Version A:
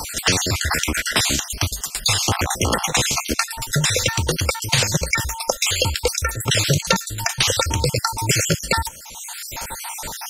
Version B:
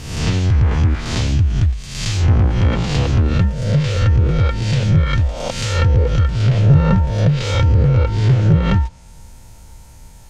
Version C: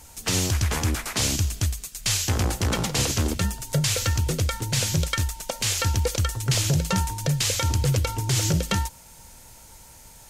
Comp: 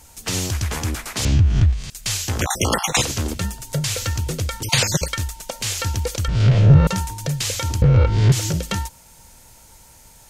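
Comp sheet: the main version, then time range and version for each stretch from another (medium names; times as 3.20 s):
C
1.25–1.90 s: from B
2.41–3.03 s: from A
4.63–5.08 s: from A
6.28–6.87 s: from B
7.82–8.32 s: from B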